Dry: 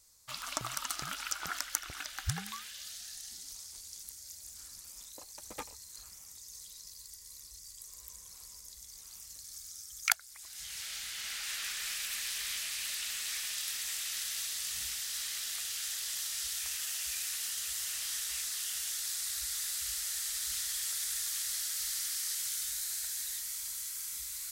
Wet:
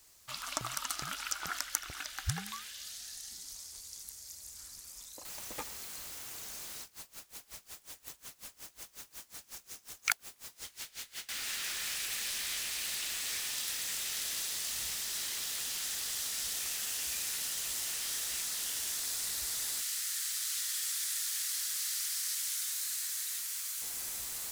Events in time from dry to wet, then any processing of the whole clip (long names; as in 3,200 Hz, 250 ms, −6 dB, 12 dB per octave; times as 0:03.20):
0:05.25: noise floor change −65 dB −46 dB
0:06.82–0:11.29: tremolo with a sine in dB 5.5 Hz, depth 24 dB
0:19.81–0:23.82: inverse Chebyshev high-pass filter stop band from 200 Hz, stop band 80 dB